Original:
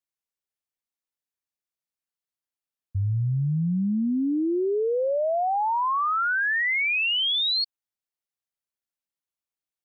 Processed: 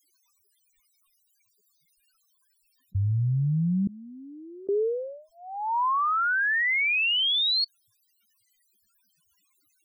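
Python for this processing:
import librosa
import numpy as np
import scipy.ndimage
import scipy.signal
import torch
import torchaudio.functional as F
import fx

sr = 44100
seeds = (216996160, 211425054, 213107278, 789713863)

y = scipy.signal.sosfilt(scipy.signal.cheby1(3, 1.0, [440.0, 960.0], 'bandstop', fs=sr, output='sos'), x)
y = fx.spec_topn(y, sr, count=8)
y = fx.gate_flip(y, sr, shuts_db=-32.0, range_db=-37, at=(3.87, 4.69))
y = fx.env_flatten(y, sr, amount_pct=50)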